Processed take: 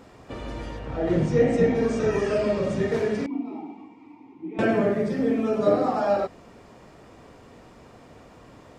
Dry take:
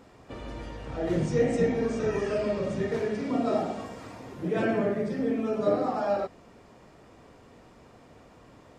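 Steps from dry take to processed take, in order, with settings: 0.78–1.74 high shelf 4600 Hz -> 7300 Hz -12 dB; 3.26–4.59 vowel filter u; gain +4.5 dB

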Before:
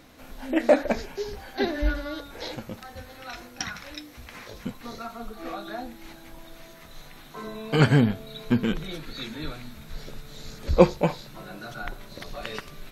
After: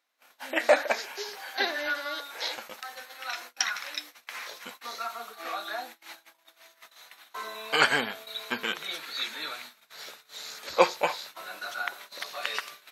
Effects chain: HPF 920 Hz 12 dB/oct; gate -49 dBFS, range -27 dB; gain +5.5 dB

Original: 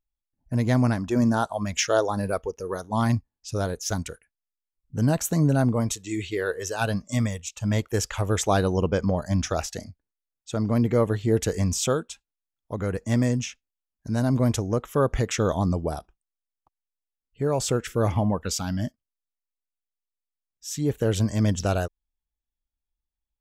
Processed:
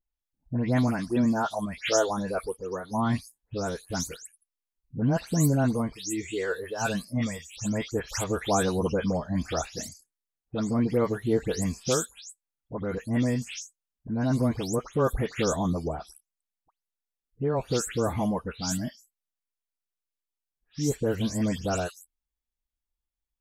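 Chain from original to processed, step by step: spectral delay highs late, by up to 0.194 s; gain -2 dB

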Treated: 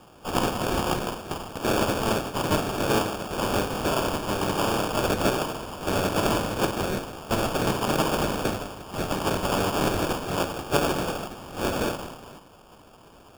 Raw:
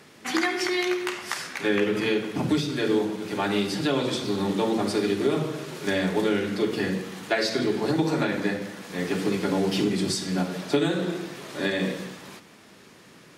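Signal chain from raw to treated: spectral limiter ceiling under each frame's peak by 22 dB; sample-and-hold 22×

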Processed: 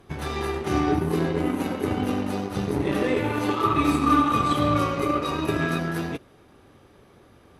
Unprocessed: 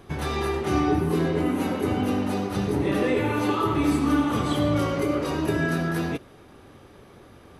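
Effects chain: added harmonics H 7 -25 dB, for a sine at -11 dBFS; 3.64–5.79 small resonant body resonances 1200/2500/3800 Hz, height 14 dB, ringing for 45 ms

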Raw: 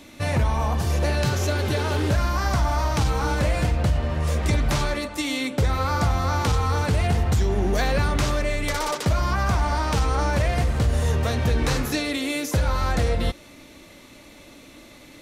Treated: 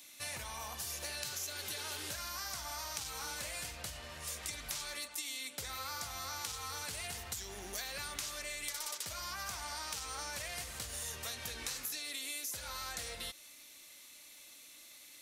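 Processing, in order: pre-emphasis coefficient 0.97; compressor, threshold -37 dBFS, peak gain reduction 7.5 dB

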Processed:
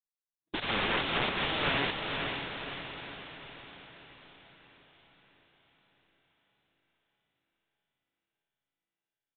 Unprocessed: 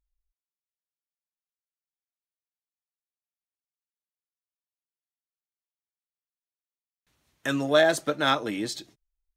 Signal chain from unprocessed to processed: whole clip reversed; sample leveller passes 5; in parallel at +1.5 dB: limiter -19 dBFS, peak gain reduction 11.5 dB; on the sum: envelope flanger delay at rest 6.3 ms, full sweep at -8.5 dBFS; wrapped overs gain 18.5 dB; expander -49 dBFS; on a send: diffused feedback echo 0.504 s, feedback 55%, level -4.5 dB; on the sum: downsampling 8000 Hz; gain -4 dB

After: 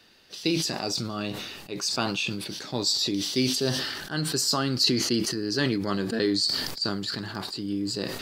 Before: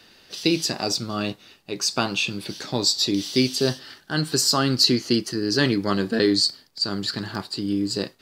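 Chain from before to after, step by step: sustainer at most 37 dB/s; gain -5.5 dB

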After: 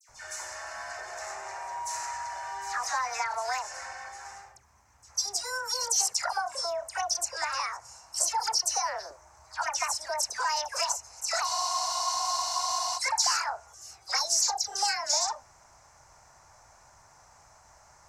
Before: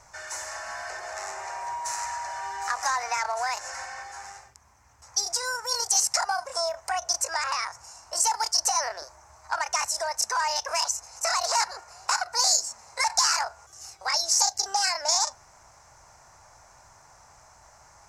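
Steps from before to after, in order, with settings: dispersion lows, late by 91 ms, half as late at 2100 Hz; spectral freeze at 11.47, 1.49 s; gain -3 dB

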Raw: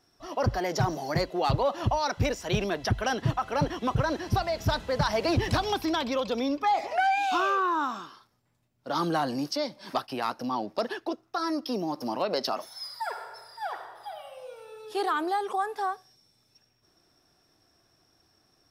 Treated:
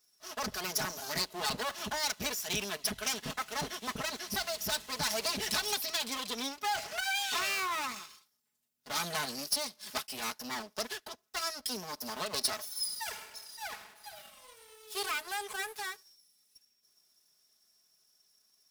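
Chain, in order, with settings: minimum comb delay 4.7 ms; HPF 59 Hz; pre-emphasis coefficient 0.9; sample leveller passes 1; gain +4.5 dB

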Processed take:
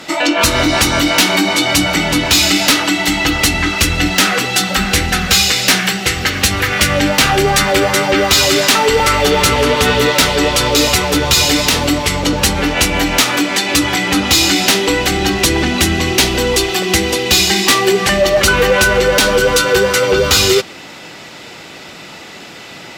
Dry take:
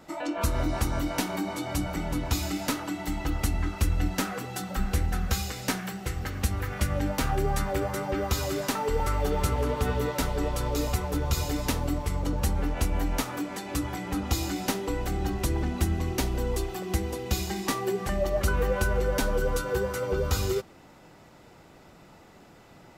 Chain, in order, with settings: weighting filter D; in parallel at -11.5 dB: sine folder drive 14 dB, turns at -6.5 dBFS; on the sum: maximiser +8.5 dB; gain -1 dB

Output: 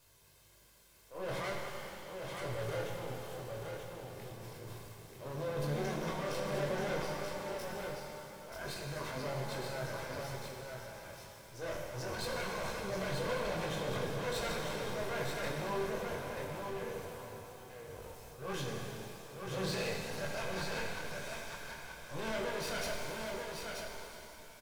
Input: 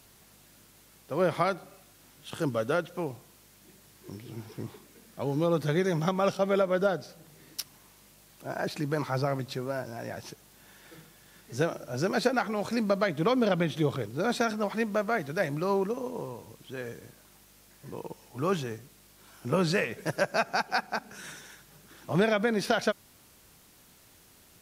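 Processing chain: minimum comb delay 1.9 ms; transient shaper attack -10 dB, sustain +6 dB; chorus 0.55 Hz, delay 19.5 ms, depth 5.7 ms; hard clip -31 dBFS, distortion -13 dB; on a send: echo 0.933 s -5 dB; on the sum: shimmer reverb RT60 2.9 s, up +7 st, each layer -8 dB, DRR 1 dB; gain -4 dB

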